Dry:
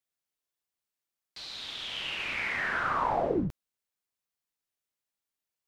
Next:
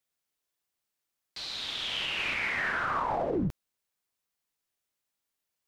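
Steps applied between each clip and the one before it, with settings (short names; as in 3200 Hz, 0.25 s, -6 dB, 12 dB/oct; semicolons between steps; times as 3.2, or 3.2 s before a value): limiter -26 dBFS, peak gain reduction 9 dB; gain +4 dB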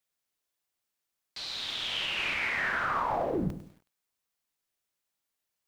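notches 50/100/150/200/250/300/350/400/450/500 Hz; lo-fi delay 0.1 s, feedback 35%, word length 9-bit, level -12 dB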